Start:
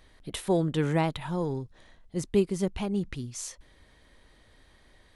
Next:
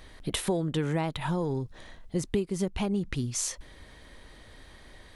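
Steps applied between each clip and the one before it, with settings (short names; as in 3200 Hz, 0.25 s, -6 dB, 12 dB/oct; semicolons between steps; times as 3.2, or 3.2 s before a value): compressor 5:1, threshold -34 dBFS, peak gain reduction 14.5 dB; gain +8 dB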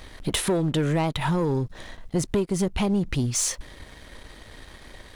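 sample leveller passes 2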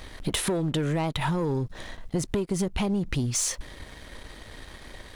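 compressor 4:1, threshold -25 dBFS, peak gain reduction 5 dB; gain +1 dB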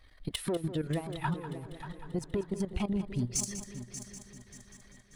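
per-bin expansion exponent 1.5; level quantiser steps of 14 dB; multi-head echo 0.195 s, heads first and third, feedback 53%, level -12.5 dB; gain -1.5 dB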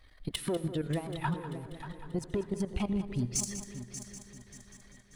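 reverb RT60 1.2 s, pre-delay 73 ms, DRR 16.5 dB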